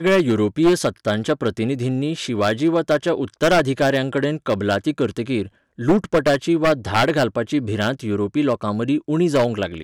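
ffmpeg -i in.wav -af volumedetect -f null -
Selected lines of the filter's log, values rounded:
mean_volume: -19.5 dB
max_volume: -4.3 dB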